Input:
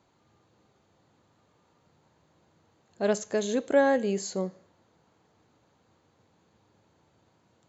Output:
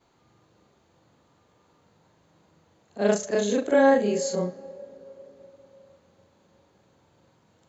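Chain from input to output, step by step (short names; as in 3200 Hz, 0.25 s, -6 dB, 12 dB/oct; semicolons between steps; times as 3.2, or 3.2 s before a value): short-time reversal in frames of 88 ms; on a send: bell 540 Hz +14.5 dB 0.36 oct + reverb RT60 3.6 s, pre-delay 61 ms, DRR 20.5 dB; on the sum: gain +6.5 dB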